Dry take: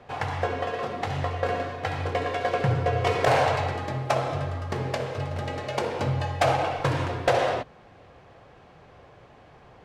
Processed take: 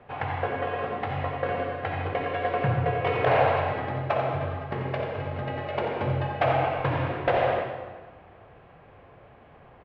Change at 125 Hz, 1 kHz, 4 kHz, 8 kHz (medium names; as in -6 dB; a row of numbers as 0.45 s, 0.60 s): -1.5 dB, 0.0 dB, -5.5 dB, under -25 dB